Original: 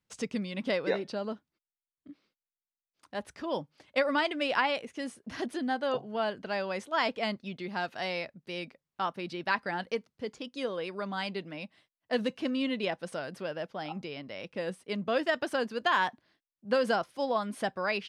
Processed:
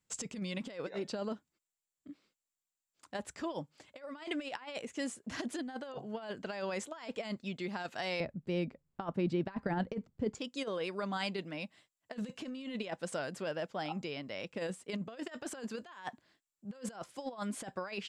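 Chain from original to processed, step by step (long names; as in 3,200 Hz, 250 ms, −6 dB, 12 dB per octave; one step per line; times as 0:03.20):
parametric band 7,400 Hz +14.5 dB 0.26 octaves
compressor whose output falls as the input rises −34 dBFS, ratio −0.5
0:08.20–0:10.35: spectral tilt −4 dB per octave
level −4 dB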